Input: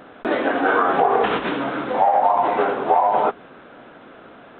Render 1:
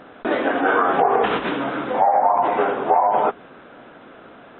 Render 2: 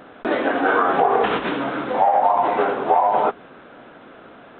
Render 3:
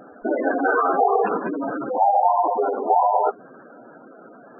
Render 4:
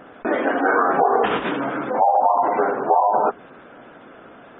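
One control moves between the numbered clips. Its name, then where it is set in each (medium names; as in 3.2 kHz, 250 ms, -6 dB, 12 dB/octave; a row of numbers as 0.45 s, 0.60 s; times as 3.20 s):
spectral gate, under each frame's peak: -40 dB, -60 dB, -10 dB, -25 dB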